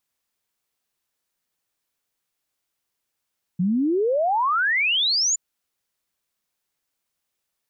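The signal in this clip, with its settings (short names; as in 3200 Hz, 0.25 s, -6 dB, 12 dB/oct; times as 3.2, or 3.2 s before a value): log sweep 170 Hz -> 7200 Hz 1.77 s -18 dBFS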